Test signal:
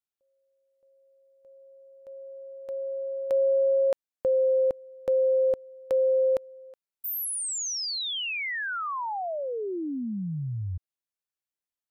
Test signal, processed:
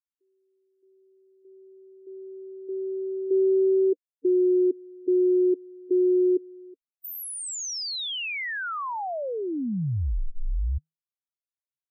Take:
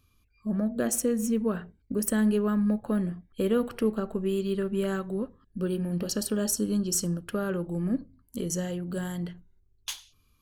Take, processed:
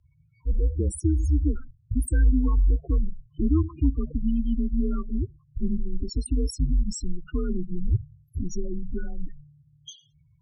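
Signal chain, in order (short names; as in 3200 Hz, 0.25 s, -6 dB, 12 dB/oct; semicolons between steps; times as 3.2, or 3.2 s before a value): loudest bins only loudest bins 8; frequency shift -160 Hz; low shelf 240 Hz +6.5 dB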